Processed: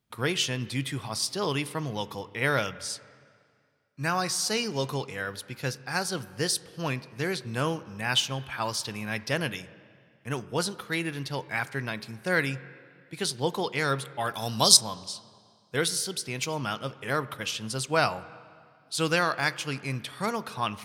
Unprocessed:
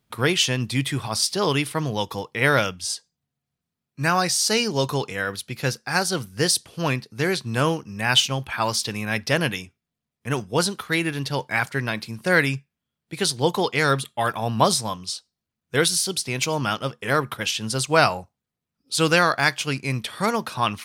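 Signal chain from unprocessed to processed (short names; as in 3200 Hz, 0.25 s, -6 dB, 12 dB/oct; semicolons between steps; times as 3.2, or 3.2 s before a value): 14.34–14.77 resonant high shelf 3000 Hz +13 dB, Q 1.5; reverb RT60 2.2 s, pre-delay 6 ms, DRR 16.5 dB; gain -7 dB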